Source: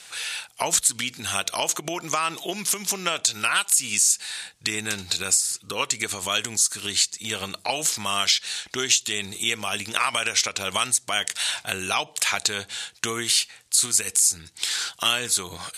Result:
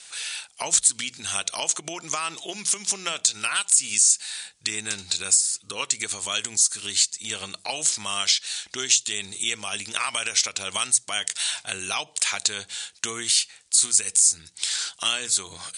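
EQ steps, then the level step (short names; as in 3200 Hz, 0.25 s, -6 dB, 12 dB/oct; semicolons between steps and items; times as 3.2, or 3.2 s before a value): steep low-pass 10000 Hz 96 dB/oct; high shelf 3700 Hz +9.5 dB; notches 60/120/180 Hz; -6.0 dB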